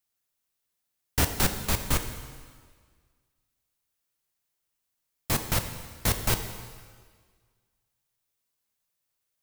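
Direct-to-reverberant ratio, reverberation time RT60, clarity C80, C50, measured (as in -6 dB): 6.5 dB, 1.7 s, 9.5 dB, 8.5 dB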